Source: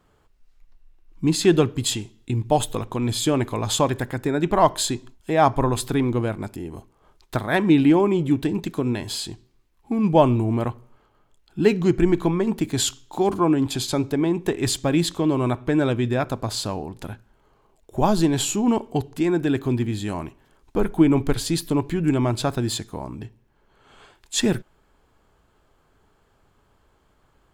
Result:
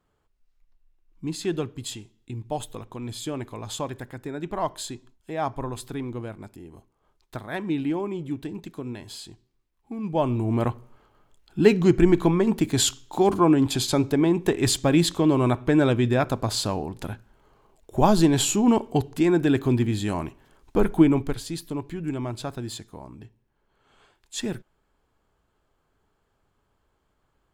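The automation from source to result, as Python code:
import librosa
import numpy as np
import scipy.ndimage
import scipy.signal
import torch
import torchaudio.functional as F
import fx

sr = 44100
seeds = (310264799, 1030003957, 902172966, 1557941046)

y = fx.gain(x, sr, db=fx.line((10.07, -10.5), (10.65, 1.0), (20.96, 1.0), (21.43, -9.0)))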